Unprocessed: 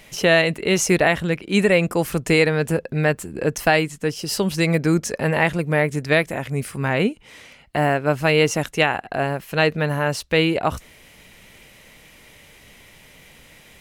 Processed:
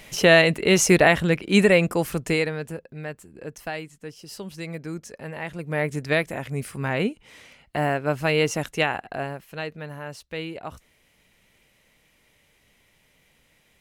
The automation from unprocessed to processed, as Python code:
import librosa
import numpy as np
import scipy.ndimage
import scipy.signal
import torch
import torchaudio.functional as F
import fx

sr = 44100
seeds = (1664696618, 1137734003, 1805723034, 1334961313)

y = fx.gain(x, sr, db=fx.line((1.56, 1.0), (2.32, -5.5), (2.86, -15.0), (5.41, -15.0), (5.86, -4.5), (9.03, -4.5), (9.66, -14.5)))